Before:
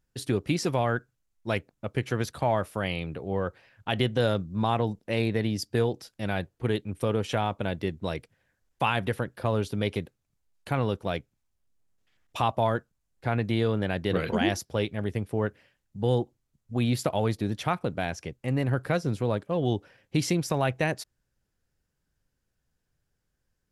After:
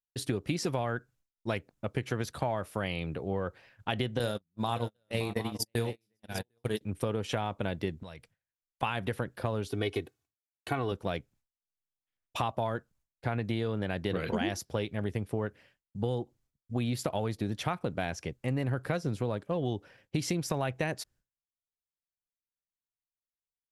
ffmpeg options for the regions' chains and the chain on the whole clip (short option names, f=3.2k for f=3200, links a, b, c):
-filter_complex "[0:a]asettb=1/sr,asplit=3[a][b][c];[a]atrim=end=4.194[d];[b]atrim=start=4.19:end=6.81,asetpts=PTS-STARTPTS,afade=t=in:d=0.004:c=qsin,afade=t=out:st=2.616:d=0.004:c=qsin,aemphasis=mode=production:type=50fm,aecho=1:1:42|568|756:0.282|0.266|0.398,atrim=end_sample=115542,agate=range=-44dB:threshold=-26dB:ratio=16:release=100:detection=peak[e];[c]atrim=start=6.806[f];[d][e]acrossfade=d=0.004:c1=hsin:c2=qsin[g];[g][f]acrossfade=d=0.004:c1=qsin:c2=hsin,asettb=1/sr,asplit=3[h][i][j];[h]atrim=end=8.034[k];[i]atrim=start=8.03:end=8.83,asetpts=PTS-STARTPTS,afade=t=in:d=0.004:c=qsin,afade=t=out:st=0.796:d=0.004:c=qsin,equalizer=f=350:t=o:w=1.1:g=-8.5,acompressor=threshold=-47dB:ratio=2.5:attack=3.2:release=140:knee=1:detection=peak[l];[j]atrim=start=8.826[m];[k][l]acrossfade=d=0.004:c1=hsin:c2=qsin[n];[n][m]acrossfade=d=0.004:c1=qsin:c2=hsin,asettb=1/sr,asplit=3[o][p][q];[o]atrim=end=9.684[r];[p]atrim=start=9.68:end=10.92,asetpts=PTS-STARTPTS,afade=t=in:d=0.004:c=qsin,afade=t=out:st=1.236:d=0.004:c=qsin,highpass=100,aecho=1:1:2.7:0.71,atrim=end_sample=54684[s];[q]atrim=start=10.916[t];[r][s]acrossfade=d=0.004:c1=hsin:c2=qsin[u];[u][t]acrossfade=d=0.004:c1=qsin:c2=hsin,agate=range=-33dB:threshold=-55dB:ratio=3:detection=peak,acompressor=threshold=-27dB:ratio=6"